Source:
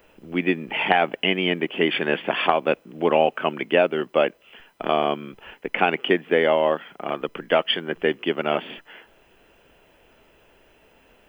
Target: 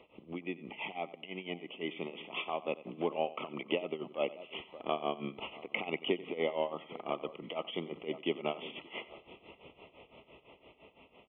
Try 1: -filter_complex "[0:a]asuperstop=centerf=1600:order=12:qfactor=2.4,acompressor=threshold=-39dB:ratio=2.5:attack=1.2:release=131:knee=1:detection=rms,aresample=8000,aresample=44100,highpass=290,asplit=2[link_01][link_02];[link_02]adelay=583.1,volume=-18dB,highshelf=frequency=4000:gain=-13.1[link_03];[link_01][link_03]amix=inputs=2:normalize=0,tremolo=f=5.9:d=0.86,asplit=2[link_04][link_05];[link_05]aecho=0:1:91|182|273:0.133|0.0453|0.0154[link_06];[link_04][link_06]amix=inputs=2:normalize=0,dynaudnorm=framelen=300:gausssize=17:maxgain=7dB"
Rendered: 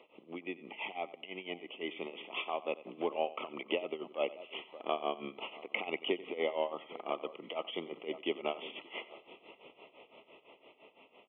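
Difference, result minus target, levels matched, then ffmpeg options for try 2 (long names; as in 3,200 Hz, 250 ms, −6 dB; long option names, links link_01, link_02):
125 Hz band −9.0 dB
-filter_complex "[0:a]asuperstop=centerf=1600:order=12:qfactor=2.4,acompressor=threshold=-39dB:ratio=2.5:attack=1.2:release=131:knee=1:detection=rms,aresample=8000,aresample=44100,highpass=78,asplit=2[link_01][link_02];[link_02]adelay=583.1,volume=-18dB,highshelf=frequency=4000:gain=-13.1[link_03];[link_01][link_03]amix=inputs=2:normalize=0,tremolo=f=5.9:d=0.86,asplit=2[link_04][link_05];[link_05]aecho=0:1:91|182|273:0.133|0.0453|0.0154[link_06];[link_04][link_06]amix=inputs=2:normalize=0,dynaudnorm=framelen=300:gausssize=17:maxgain=7dB"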